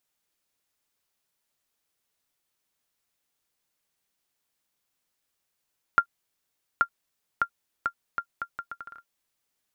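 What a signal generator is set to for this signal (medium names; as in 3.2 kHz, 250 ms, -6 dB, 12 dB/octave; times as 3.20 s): bouncing ball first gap 0.83 s, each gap 0.73, 1.39 kHz, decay 78 ms -7.5 dBFS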